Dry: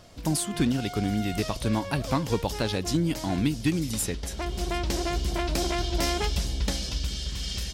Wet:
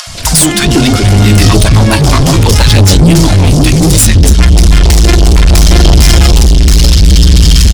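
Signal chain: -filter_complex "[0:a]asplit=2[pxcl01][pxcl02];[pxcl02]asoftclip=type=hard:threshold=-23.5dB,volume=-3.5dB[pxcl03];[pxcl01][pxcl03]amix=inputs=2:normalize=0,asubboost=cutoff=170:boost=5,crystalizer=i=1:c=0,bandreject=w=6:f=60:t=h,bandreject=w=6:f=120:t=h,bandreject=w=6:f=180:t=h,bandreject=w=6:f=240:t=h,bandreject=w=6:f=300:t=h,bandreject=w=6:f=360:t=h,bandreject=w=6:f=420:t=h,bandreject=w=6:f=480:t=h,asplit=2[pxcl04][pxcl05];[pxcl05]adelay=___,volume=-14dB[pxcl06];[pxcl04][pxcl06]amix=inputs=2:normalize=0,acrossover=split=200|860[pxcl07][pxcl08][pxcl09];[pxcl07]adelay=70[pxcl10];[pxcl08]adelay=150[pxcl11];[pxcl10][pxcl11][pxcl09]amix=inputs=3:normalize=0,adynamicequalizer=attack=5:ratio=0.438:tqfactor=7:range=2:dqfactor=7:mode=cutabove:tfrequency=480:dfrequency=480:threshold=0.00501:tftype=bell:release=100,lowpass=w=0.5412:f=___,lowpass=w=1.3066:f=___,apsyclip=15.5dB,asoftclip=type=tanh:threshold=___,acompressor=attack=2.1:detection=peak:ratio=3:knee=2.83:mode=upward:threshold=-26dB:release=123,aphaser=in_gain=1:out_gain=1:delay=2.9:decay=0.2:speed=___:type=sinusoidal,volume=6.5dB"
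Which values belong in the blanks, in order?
12, 11k, 11k, -9.5dB, 0.68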